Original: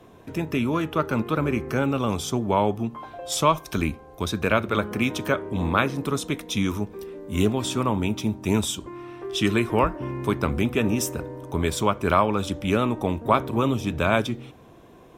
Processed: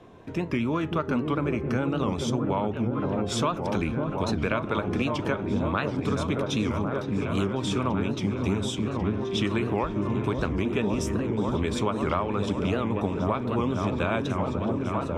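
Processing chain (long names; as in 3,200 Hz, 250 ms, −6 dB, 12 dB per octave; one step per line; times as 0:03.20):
high-frequency loss of the air 71 metres
on a send: echo whose low-pass opens from repeat to repeat 549 ms, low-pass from 400 Hz, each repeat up 1 octave, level −3 dB
on the sum: downward compressor, threshold −22 dBFS, peak gain reduction 10 dB
wow of a warped record 78 rpm, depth 160 cents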